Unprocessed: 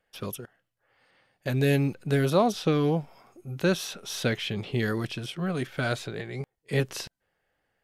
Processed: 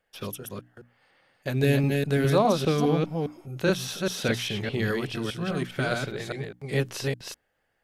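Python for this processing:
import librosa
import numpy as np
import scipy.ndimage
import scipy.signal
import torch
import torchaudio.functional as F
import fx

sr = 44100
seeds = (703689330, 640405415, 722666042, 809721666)

y = fx.reverse_delay(x, sr, ms=204, wet_db=-3)
y = fx.hum_notches(y, sr, base_hz=60, count=5)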